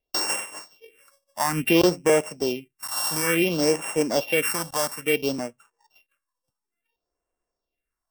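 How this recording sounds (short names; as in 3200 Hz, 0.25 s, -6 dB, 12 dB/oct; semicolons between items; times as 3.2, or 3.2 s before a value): a buzz of ramps at a fixed pitch in blocks of 16 samples; phasing stages 4, 0.58 Hz, lowest notch 380–4100 Hz; AAC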